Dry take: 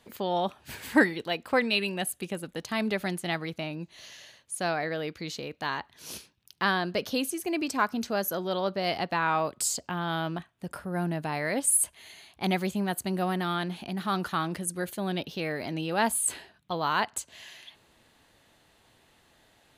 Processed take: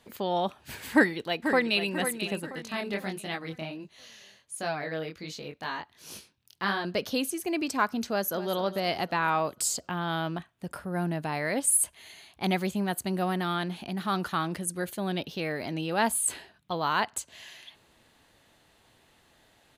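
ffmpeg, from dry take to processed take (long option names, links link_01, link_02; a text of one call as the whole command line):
ffmpeg -i in.wav -filter_complex "[0:a]asplit=2[link_01][link_02];[link_02]afade=type=in:start_time=0.93:duration=0.01,afade=type=out:start_time=1.9:duration=0.01,aecho=0:1:490|980|1470|1960|2450:0.375837|0.169127|0.0761071|0.0342482|0.0154117[link_03];[link_01][link_03]amix=inputs=2:normalize=0,asettb=1/sr,asplit=3[link_04][link_05][link_06];[link_04]atrim=end=2.524[link_07];[link_05]atrim=start=2.52:end=6.85,asetpts=PTS-STARTPTS,afade=type=in:duration=0.004:curve=qsin,afade=type=out:start_time=4.326:duration=0.004:curve=qsin,flanger=delay=19:depth=6.4:speed=1.4[link_08];[link_06]atrim=start=6.846[link_09];[link_07][link_08]acrossfade=duration=0.004:curve1=hsin:curve2=qsin[link_10];[link_10][link_09]acrossfade=duration=0.004:curve1=qsin:curve2=hsin,asplit=2[link_11][link_12];[link_12]afade=type=in:start_time=8.09:duration=0.01,afade=type=out:start_time=8.54:duration=0.01,aecho=0:1:250|500|750|1000|1250|1500:0.211349|0.116242|0.063933|0.0351632|0.0193397|0.0106369[link_13];[link_11][link_13]amix=inputs=2:normalize=0" out.wav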